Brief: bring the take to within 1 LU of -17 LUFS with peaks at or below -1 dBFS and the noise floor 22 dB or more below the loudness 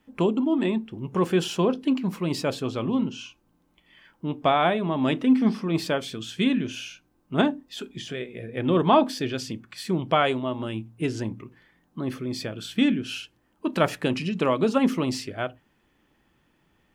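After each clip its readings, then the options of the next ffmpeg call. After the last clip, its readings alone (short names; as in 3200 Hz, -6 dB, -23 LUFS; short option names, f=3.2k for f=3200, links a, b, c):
loudness -25.5 LUFS; peak -6.0 dBFS; loudness target -17.0 LUFS
-> -af "volume=8.5dB,alimiter=limit=-1dB:level=0:latency=1"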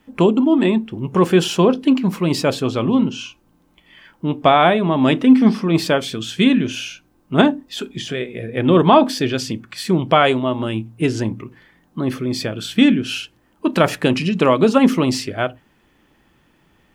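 loudness -17.5 LUFS; peak -1.0 dBFS; noise floor -59 dBFS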